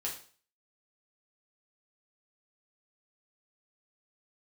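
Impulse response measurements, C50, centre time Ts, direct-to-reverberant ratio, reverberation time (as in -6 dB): 7.5 dB, 24 ms, -4.0 dB, 0.45 s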